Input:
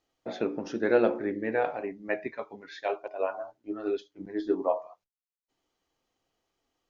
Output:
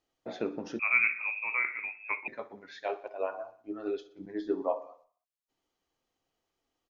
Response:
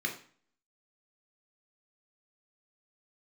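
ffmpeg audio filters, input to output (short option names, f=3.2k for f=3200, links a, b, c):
-filter_complex "[0:a]aecho=1:1:61|122|183|244|305:0.133|0.076|0.0433|0.0247|0.0141,asettb=1/sr,asplit=3[a][b][c];[a]atrim=end=0.794[d];[b]atrim=start=0.79:end=2.28,asetpts=PTS-STARTPTS,afade=t=in:d=0.004:c=qsin,afade=t=out:st=1.486:d=0.004:c=qsin,lowpass=f=2.4k:t=q:w=0.5098,lowpass=f=2.4k:t=q:w=0.6013,lowpass=f=2.4k:t=q:w=0.9,lowpass=f=2.4k:t=q:w=2.563,afreqshift=-2800[e];[c]atrim=start=2.276[f];[d][e]acrossfade=d=0.004:c1=hsin:c2=qsin[g];[g][f]acrossfade=d=0.004:c1=qsin:c2=hsin,volume=-3.5dB"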